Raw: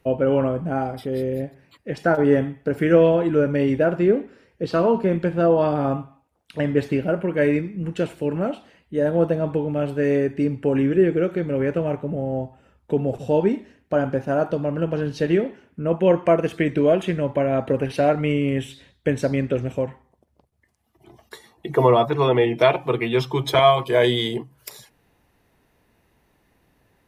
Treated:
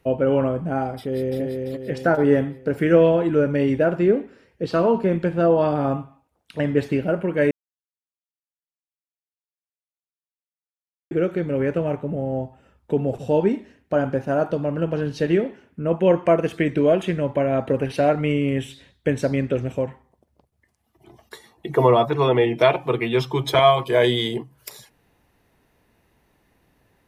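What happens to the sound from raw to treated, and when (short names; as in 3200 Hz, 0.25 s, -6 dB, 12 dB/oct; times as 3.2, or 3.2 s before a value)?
0.97–1.42 echo throw 0.34 s, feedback 50%, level -3.5 dB
7.51–11.11 mute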